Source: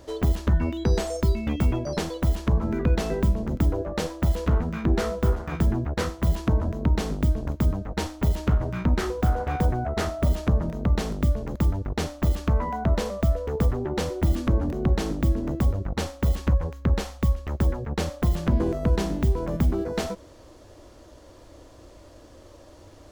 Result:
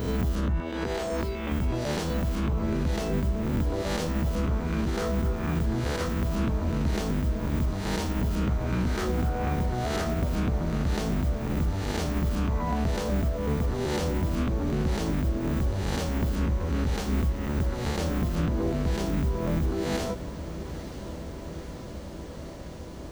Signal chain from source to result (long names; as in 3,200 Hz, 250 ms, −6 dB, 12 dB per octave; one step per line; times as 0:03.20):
peak hold with a rise ahead of every peak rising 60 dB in 0.83 s
0:00.60–0:01.52: bass and treble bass −14 dB, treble −7 dB
downward compressor 2 to 1, threshold −25 dBFS, peak gain reduction 6.5 dB
brickwall limiter −19 dBFS, peak gain reduction 7 dB
on a send: feedback delay with all-pass diffusion 964 ms, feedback 79%, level −13 dB